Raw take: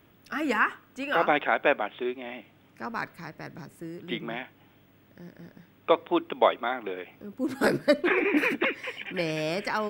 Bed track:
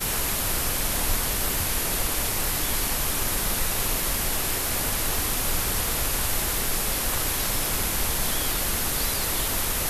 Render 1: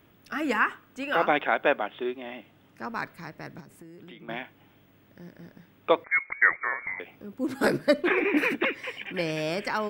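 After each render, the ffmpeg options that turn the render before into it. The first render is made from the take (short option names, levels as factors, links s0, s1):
-filter_complex "[0:a]asettb=1/sr,asplit=3[s0][s1][s2];[s0]atrim=end=1.574[s3];[s1]atrim=start=1.57:end=2.84,asetpts=PTS-STARTPTS,afade=t=in:d=0.004:c=qsin,afade=t=out:st=1.266:d=0.004:c=qsin,bandreject=f=2300:w=12[s4];[s2]atrim=start=2.836[s5];[s3][s4]acrossfade=d=0.004:c1=hsin:c2=qsin[s6];[s6][s5]acrossfade=d=0.004:c1=qsin:c2=hsin,asettb=1/sr,asplit=3[s7][s8][s9];[s7]atrim=end=3.604[s10];[s8]atrim=start=3.6:end=4.29,asetpts=PTS-STARTPTS,afade=t=in:d=0.004:c=qsin,afade=t=out:st=0.686:d=0.004:c=qsin,acompressor=threshold=0.00708:ratio=10:attack=3.2:release=140:knee=1:detection=peak[s11];[s9]atrim=start=4.286[s12];[s10][s11]acrossfade=d=0.004:c1=hsin:c2=qsin[s13];[s13][s12]acrossfade=d=0.004:c1=qsin:c2=hsin,asettb=1/sr,asplit=3[s14][s15][s16];[s14]atrim=end=6.044[s17];[s15]atrim=start=6.04:end=7,asetpts=PTS-STARTPTS,afade=t=in:d=0.004:c=qsin,afade=t=out:st=0.956:d=0.004:c=qsin,lowpass=f=2100:t=q:w=0.5098,lowpass=f=2100:t=q:w=0.6013,lowpass=f=2100:t=q:w=0.9,lowpass=f=2100:t=q:w=2.563,afreqshift=-2500[s18];[s16]atrim=start=6.996[s19];[s17][s18]acrossfade=d=0.004:c1=hsin:c2=qsin[s20];[s20][s19]acrossfade=d=0.004:c1=qsin:c2=hsin"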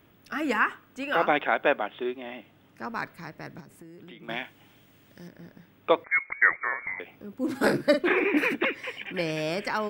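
-filter_complex "[0:a]asettb=1/sr,asplit=3[s0][s1][s2];[s0]atrim=end=4.234[s3];[s1]atrim=start=4.23:end=5.28,asetpts=PTS-STARTPTS,afade=t=in:d=0.004:c=qsin,afade=t=out:st=1.046:d=0.004:c=qsin,equalizer=f=7500:t=o:w=2.4:g=10.5[s4];[s2]atrim=start=5.276[s5];[s3][s4]acrossfade=d=0.004:c1=hsin:c2=qsin[s6];[s6][s5]acrossfade=d=0.004:c1=qsin:c2=hsin,asettb=1/sr,asplit=3[s7][s8][s9];[s7]atrim=end=7.364[s10];[s8]atrim=start=7.36:end=8.27,asetpts=PTS-STARTPTS,afade=t=in:d=0.004:c=qsin,afade=t=out:st=0.906:d=0.004:c=qsin,asplit=2[s11][s12];[s12]adelay=47,volume=0.376[s13];[s11][s13]amix=inputs=2:normalize=0,atrim=end_sample=40131[s14];[s9]atrim=start=8.266[s15];[s10][s14]acrossfade=d=0.004:c1=hsin:c2=qsin[s16];[s16][s15]acrossfade=d=0.004:c1=qsin:c2=hsin"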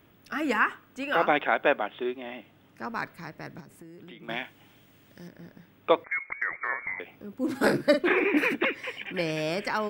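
-filter_complex "[0:a]asettb=1/sr,asplit=3[s0][s1][s2];[s0]atrim=end=6.024[s3];[s1]atrim=start=6.02:end=6.69,asetpts=PTS-STARTPTS,afade=t=in:d=0.004:c=qsin,afade=t=out:st=0.666:d=0.004:c=qsin,acompressor=threshold=0.0562:ratio=6:attack=3.2:release=140:knee=1:detection=peak[s4];[s2]atrim=start=6.686[s5];[s3][s4]acrossfade=d=0.004:c1=hsin:c2=qsin[s6];[s6][s5]acrossfade=d=0.004:c1=qsin:c2=hsin"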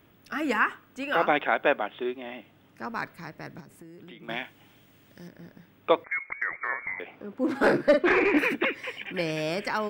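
-filter_complex "[0:a]asettb=1/sr,asplit=3[s0][s1][s2];[s0]atrim=end=7.024[s3];[s1]atrim=start=7.02:end=8.39,asetpts=PTS-STARTPTS,afade=t=in:d=0.004:c=qsin,afade=t=out:st=1.366:d=0.004:c=qsin,asplit=2[s4][s5];[s5]highpass=f=720:p=1,volume=5.62,asoftclip=type=tanh:threshold=0.376[s6];[s4][s6]amix=inputs=2:normalize=0,lowpass=f=1200:p=1,volume=0.501[s7];[s2]atrim=start=8.386[s8];[s3][s7]acrossfade=d=0.004:c1=hsin:c2=qsin[s9];[s9][s8]acrossfade=d=0.004:c1=qsin:c2=hsin"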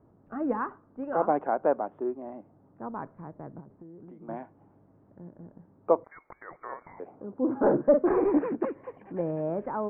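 -af "lowpass=f=1000:w=0.5412,lowpass=f=1000:w=1.3066"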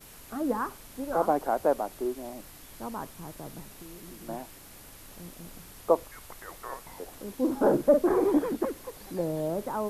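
-filter_complex "[1:a]volume=0.0668[s0];[0:a][s0]amix=inputs=2:normalize=0"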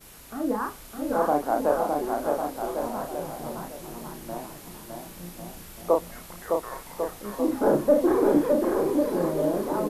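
-filter_complex "[0:a]asplit=2[s0][s1];[s1]adelay=34,volume=0.668[s2];[s0][s2]amix=inputs=2:normalize=0,aecho=1:1:610|1098|1488|1801|2051:0.631|0.398|0.251|0.158|0.1"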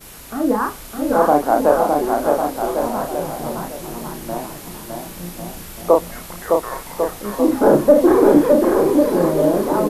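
-af "volume=2.82,alimiter=limit=0.891:level=0:latency=1"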